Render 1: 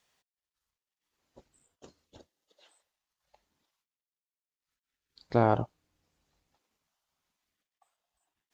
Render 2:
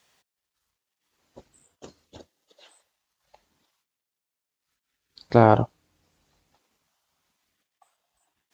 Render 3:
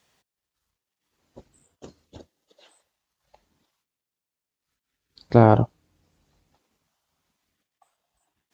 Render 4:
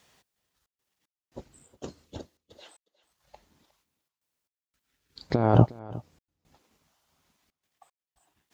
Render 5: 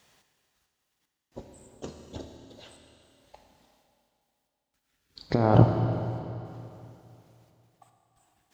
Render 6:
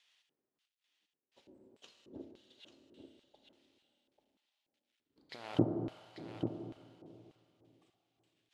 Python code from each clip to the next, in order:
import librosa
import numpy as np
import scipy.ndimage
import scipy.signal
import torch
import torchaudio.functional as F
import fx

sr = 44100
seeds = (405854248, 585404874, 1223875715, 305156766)

y1 = scipy.signal.sosfilt(scipy.signal.butter(2, 48.0, 'highpass', fs=sr, output='sos'), x)
y1 = y1 * librosa.db_to_amplitude(8.5)
y2 = fx.low_shelf(y1, sr, hz=430.0, db=7.0)
y2 = y2 * librosa.db_to_amplitude(-2.5)
y3 = fx.over_compress(y2, sr, threshold_db=-18.0, ratio=-0.5)
y3 = fx.step_gate(y3, sr, bpm=114, pattern='xxxxx.xx..xxx', floor_db=-60.0, edge_ms=4.5)
y3 = y3 + 10.0 ** (-20.0 / 20.0) * np.pad(y3, (int(360 * sr / 1000.0), 0))[:len(y3)]
y4 = fx.rev_schroeder(y3, sr, rt60_s=2.9, comb_ms=26, drr_db=4.5)
y5 = fx.cvsd(y4, sr, bps=64000)
y5 = fx.filter_lfo_bandpass(y5, sr, shape='square', hz=1.7, low_hz=320.0, high_hz=3100.0, q=2.1)
y5 = y5 + 10.0 ** (-8.0 / 20.0) * np.pad(y5, (int(841 * sr / 1000.0), 0))[:len(y5)]
y5 = y5 * librosa.db_to_amplitude(-3.5)